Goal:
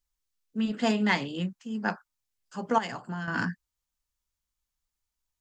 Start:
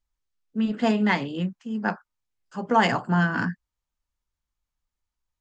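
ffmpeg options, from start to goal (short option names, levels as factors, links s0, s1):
-filter_complex "[0:a]asettb=1/sr,asplit=3[s0][s1][s2];[s0]atrim=end=2.784[s3];[s1]atrim=start=2.78:end=3.28,asetpts=PTS-STARTPTS,afade=t=in:d=0.004:c=qsin,afade=t=out:st=0.496:d=0.004:c=qsin,acompressor=threshold=0.0251:ratio=3[s4];[s2]atrim=start=3.276[s5];[s3][s4]acrossfade=d=0.004:c1=hsin:c2=qsin[s6];[s6][s5]acrossfade=d=0.004:c1=qsin:c2=hsin,highshelf=f=3400:g=10,volume=0.631"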